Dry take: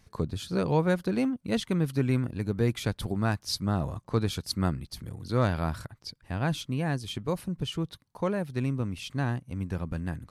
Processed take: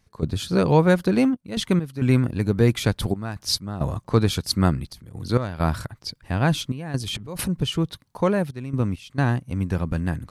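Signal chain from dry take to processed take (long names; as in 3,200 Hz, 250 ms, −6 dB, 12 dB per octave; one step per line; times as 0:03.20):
0:07.00–0:07.49: transient designer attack −4 dB, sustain +11 dB
gate pattern ".xxxxx.x" 67 BPM −12 dB
level +8 dB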